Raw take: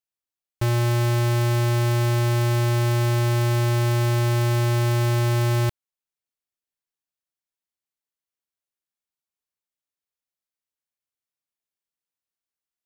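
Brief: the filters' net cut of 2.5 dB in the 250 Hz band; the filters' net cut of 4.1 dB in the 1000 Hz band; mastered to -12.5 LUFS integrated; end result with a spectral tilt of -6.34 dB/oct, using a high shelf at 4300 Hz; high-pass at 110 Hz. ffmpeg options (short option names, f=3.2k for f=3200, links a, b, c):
-af "highpass=110,equalizer=f=250:t=o:g=-4,equalizer=f=1k:t=o:g=-4.5,highshelf=f=4.3k:g=-6.5,volume=12dB"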